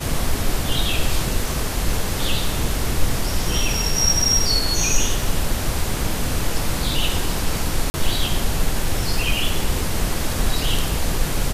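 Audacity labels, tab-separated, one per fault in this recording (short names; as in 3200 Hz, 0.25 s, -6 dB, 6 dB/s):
7.900000	7.940000	gap 40 ms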